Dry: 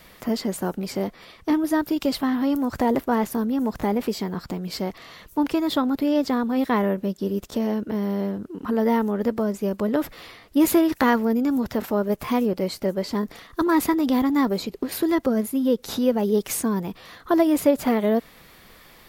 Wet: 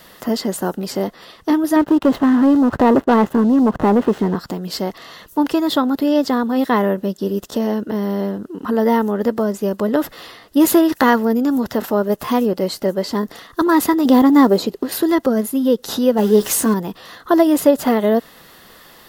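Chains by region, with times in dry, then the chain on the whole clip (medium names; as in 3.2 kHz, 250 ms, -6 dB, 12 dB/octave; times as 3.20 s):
1.76–4.36 s: median filter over 9 samples + treble shelf 2.1 kHz -11.5 dB + waveshaping leveller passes 2
14.05–14.73 s: block-companded coder 7-bit + peaking EQ 430 Hz +6 dB 2.6 oct
16.17–16.74 s: jump at every zero crossing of -33.5 dBFS + doubling 14 ms -6.5 dB
whole clip: bass shelf 110 Hz -11.5 dB; band-stop 2.3 kHz, Q 5.1; trim +6.5 dB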